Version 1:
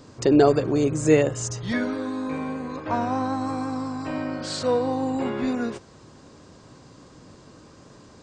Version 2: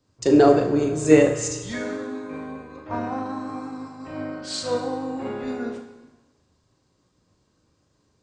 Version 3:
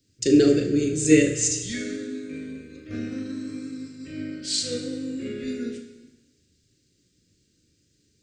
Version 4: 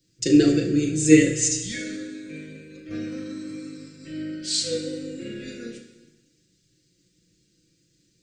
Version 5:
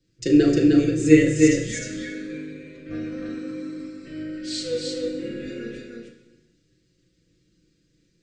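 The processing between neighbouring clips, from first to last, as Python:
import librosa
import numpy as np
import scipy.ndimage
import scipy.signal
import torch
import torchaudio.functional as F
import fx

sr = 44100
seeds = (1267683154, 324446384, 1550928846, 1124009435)

y1 = fx.room_flutter(x, sr, wall_m=6.6, rt60_s=0.24)
y1 = fx.rev_plate(y1, sr, seeds[0], rt60_s=1.8, hf_ratio=1.0, predelay_ms=0, drr_db=5.0)
y1 = fx.band_widen(y1, sr, depth_pct=70)
y1 = F.gain(torch.from_numpy(y1), -4.5).numpy()
y2 = scipy.signal.sosfilt(scipy.signal.cheby1(2, 1.0, [370.0, 2100.0], 'bandstop', fs=sr, output='sos'), y1)
y2 = fx.high_shelf(y2, sr, hz=4300.0, db=9.5)
y3 = y2 + 0.78 * np.pad(y2, (int(6.0 * sr / 1000.0), 0))[:len(y2)]
y3 = F.gain(torch.from_numpy(y3), -1.0).numpy()
y4 = fx.lowpass(y3, sr, hz=1000.0, slope=6)
y4 = fx.peak_eq(y4, sr, hz=190.0, db=-8.0, octaves=3.0)
y4 = y4 + 10.0 ** (-3.0 / 20.0) * np.pad(y4, (int(307 * sr / 1000.0), 0))[:len(y4)]
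y4 = F.gain(torch.from_numpy(y4), 7.0).numpy()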